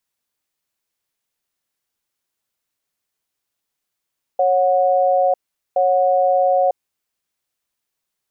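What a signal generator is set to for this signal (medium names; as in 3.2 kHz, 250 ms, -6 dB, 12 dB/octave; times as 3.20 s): cadence 550 Hz, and 732 Hz, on 0.95 s, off 0.42 s, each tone -15.5 dBFS 2.56 s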